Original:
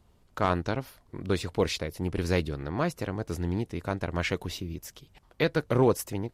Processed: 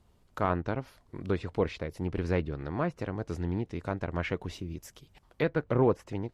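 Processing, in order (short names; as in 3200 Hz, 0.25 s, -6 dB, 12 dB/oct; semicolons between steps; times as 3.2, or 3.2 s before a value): treble ducked by the level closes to 3000 Hz, closed at -23.5 dBFS; dynamic EQ 4300 Hz, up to -7 dB, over -51 dBFS, Q 0.94; gain -2 dB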